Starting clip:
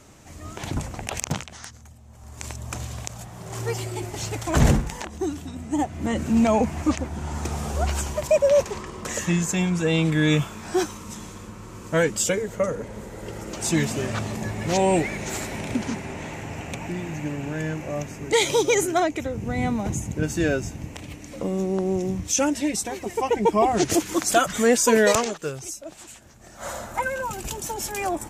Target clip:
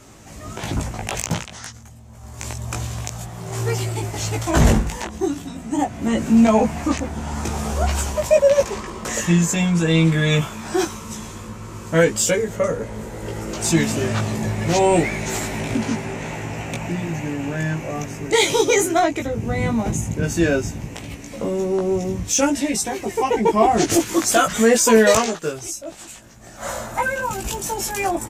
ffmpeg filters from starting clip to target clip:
ffmpeg -i in.wav -filter_complex "[0:a]asplit=2[link_01][link_02];[link_02]asoftclip=type=tanh:threshold=-19.5dB,volume=-7dB[link_03];[link_01][link_03]amix=inputs=2:normalize=0,asplit=2[link_04][link_05];[link_05]adelay=18,volume=-2.5dB[link_06];[link_04][link_06]amix=inputs=2:normalize=0" out.wav

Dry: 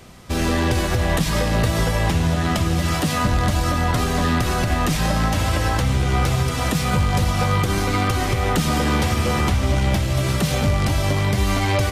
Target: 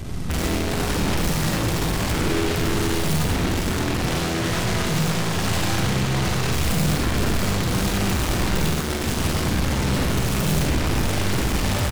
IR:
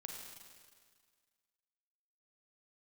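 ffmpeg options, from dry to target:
-filter_complex "[0:a]asettb=1/sr,asplit=3[link_01][link_02][link_03];[link_01]atrim=end=3.974[link_04];[link_02]atrim=start=3.97:end=6.52,asetpts=PTS-STARTPTS,afade=type=in:duration=0.004:curve=qsin,afade=type=out:start_time=2.546:duration=0.004:curve=qsin,highpass=130,lowpass=6200[link_05];[link_03]atrim=start=6.516[link_06];[link_04][link_05]acrossfade=duration=0.004:curve1=hsin:curve2=qsin[link_07];[link_07][link_06]acrossfade=duration=0.004:curve1=qsin:curve2=hsin,aecho=1:1:97|194|291|388|485:0.631|0.227|0.0818|0.0294|0.0106,alimiter=limit=-10.5dB:level=0:latency=1:release=218,bass=frequency=250:gain=15,treble=frequency=4000:gain=2,aeval=exprs='0.447*(abs(mod(val(0)/0.447+3,4)-2)-1)':channel_layout=same,acontrast=58,aeval=exprs='0.668*(cos(1*acos(clip(val(0)/0.668,-1,1)))-cos(1*PI/2))+0.0841*(cos(3*acos(clip(val(0)/0.668,-1,1)))-cos(3*PI/2))+0.168*(cos(4*acos(clip(val(0)/0.668,-1,1)))-cos(4*PI/2))+0.15*(cos(6*acos(clip(val(0)/0.668,-1,1)))-cos(6*PI/2))+0.106*(cos(7*acos(clip(val(0)/0.668,-1,1)))-cos(7*PI/2))':channel_layout=same,asoftclip=type=hard:threshold=-24.5dB[link_08];[1:a]atrim=start_sample=2205,atrim=end_sample=6174[link_09];[link_08][link_09]afir=irnorm=-1:irlink=0,volume=8.5dB"

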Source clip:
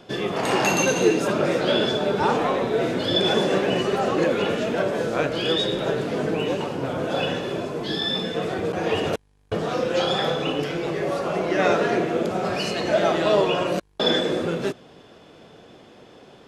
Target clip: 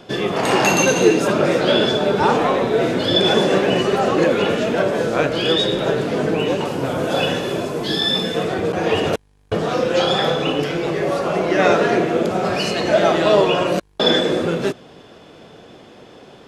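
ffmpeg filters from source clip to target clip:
ffmpeg -i in.wav -filter_complex "[0:a]asettb=1/sr,asplit=3[link_01][link_02][link_03];[link_01]atrim=end=6.654[link_04];[link_02]atrim=start=6.65:end=8.43,asetpts=PTS-STARTPTS,afade=type=in:duration=0.004:curve=qsin,afade=type=out:start_time=1.776:duration=0.004:curve=qsin,highshelf=frequency=8400:gain=12[link_05];[link_03]atrim=start=8.426[link_06];[link_04][link_05]acrossfade=duration=0.004:curve1=hsin:curve2=qsin[link_07];[link_07][link_06]acrossfade=duration=0.004:curve1=qsin:curve2=hsin,volume=5dB" out.wav

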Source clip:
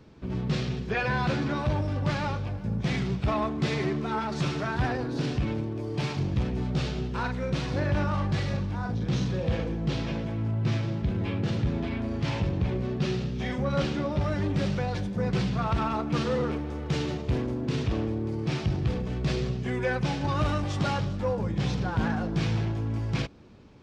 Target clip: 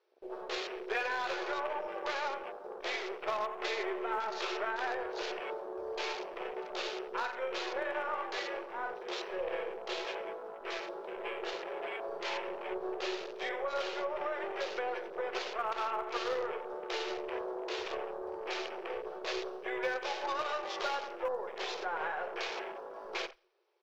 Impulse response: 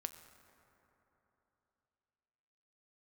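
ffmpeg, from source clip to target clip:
-filter_complex "[0:a]acrossover=split=470|1400[link_01][link_02][link_03];[link_01]asoftclip=type=hard:threshold=-32.5dB[link_04];[link_04][link_02][link_03]amix=inputs=3:normalize=0,afftfilt=real='re*between(b*sr/4096,340,6200)':imag='im*between(b*sr/4096,340,6200)':win_size=4096:overlap=0.75,asplit=2[link_05][link_06];[link_06]acrusher=bits=5:dc=4:mix=0:aa=0.000001,volume=-9dB[link_07];[link_05][link_07]amix=inputs=2:normalize=0,aecho=1:1:87|174|261:0.224|0.0716|0.0229,afwtdn=0.00708,acompressor=threshold=-31dB:ratio=3,volume=-1dB"

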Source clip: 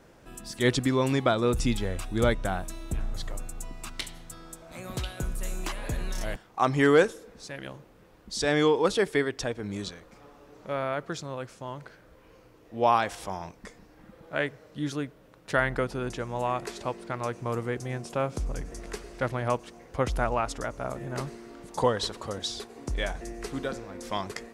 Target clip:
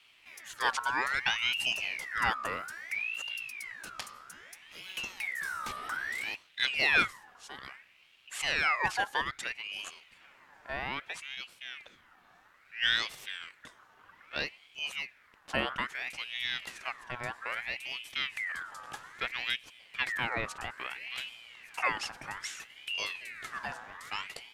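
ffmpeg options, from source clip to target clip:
ffmpeg -i in.wav -af "aeval=exprs='val(0)*sin(2*PI*2000*n/s+2000*0.4/0.61*sin(2*PI*0.61*n/s))':channel_layout=same,volume=-3.5dB" out.wav

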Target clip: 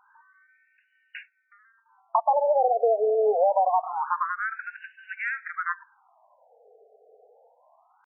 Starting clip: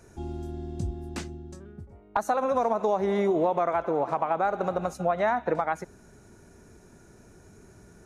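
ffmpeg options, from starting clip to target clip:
ffmpeg -i in.wav -af "asetrate=48091,aresample=44100,atempo=0.917004,acontrast=25,afftfilt=real='re*between(b*sr/1024,550*pow(2100/550,0.5+0.5*sin(2*PI*0.25*pts/sr))/1.41,550*pow(2100/550,0.5+0.5*sin(2*PI*0.25*pts/sr))*1.41)':imag='im*between(b*sr/1024,550*pow(2100/550,0.5+0.5*sin(2*PI*0.25*pts/sr))/1.41,550*pow(2100/550,0.5+0.5*sin(2*PI*0.25*pts/sr))*1.41)':win_size=1024:overlap=0.75" out.wav

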